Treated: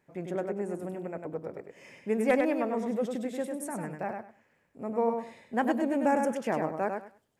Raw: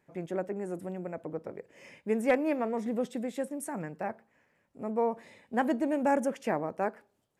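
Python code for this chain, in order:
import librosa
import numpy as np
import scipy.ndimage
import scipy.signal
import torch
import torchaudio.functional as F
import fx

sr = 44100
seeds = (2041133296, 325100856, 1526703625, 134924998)

y = fx.echo_feedback(x, sr, ms=99, feedback_pct=20, wet_db=-5.0)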